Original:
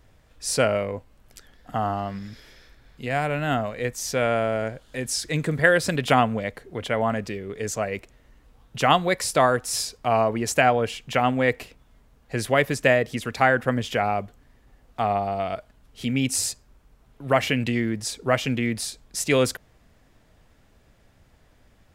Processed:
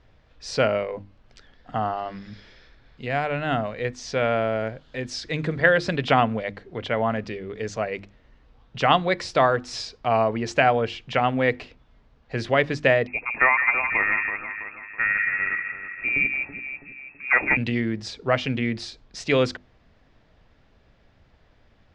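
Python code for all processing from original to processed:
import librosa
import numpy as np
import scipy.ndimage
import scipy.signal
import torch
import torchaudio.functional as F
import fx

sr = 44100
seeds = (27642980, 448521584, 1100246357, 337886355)

y = fx.chain(x, sr, fx.echo_alternate(ms=164, hz=1100.0, feedback_pct=67, wet_db=-4.5),
    fx.freq_invert(carrier_hz=2600), at=(13.07, 17.57))
y = scipy.signal.sosfilt(scipy.signal.butter(4, 5000.0, 'lowpass', fs=sr, output='sos'), y)
y = fx.hum_notches(y, sr, base_hz=50, count=7)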